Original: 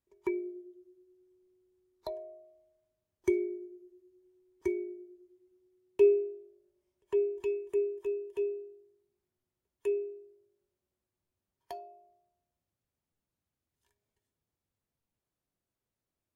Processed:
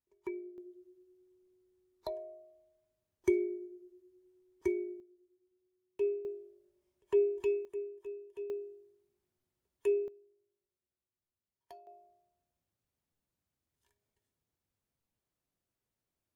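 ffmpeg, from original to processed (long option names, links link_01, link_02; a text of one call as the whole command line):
ffmpeg -i in.wav -af "asetnsamples=nb_out_samples=441:pad=0,asendcmd='0.58 volume volume -0.5dB;5 volume volume -10dB;6.25 volume volume 1dB;7.65 volume volume -9.5dB;8.5 volume volume 1dB;10.08 volume volume -10.5dB;11.87 volume volume -0.5dB',volume=-7.5dB" out.wav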